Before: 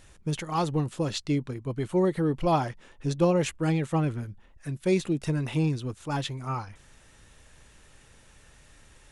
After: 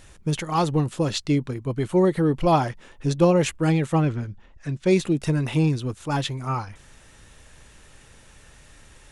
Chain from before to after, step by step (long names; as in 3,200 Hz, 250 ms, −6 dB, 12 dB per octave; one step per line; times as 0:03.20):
0:04.02–0:04.91: low-pass filter 7,100 Hz 24 dB per octave
level +5 dB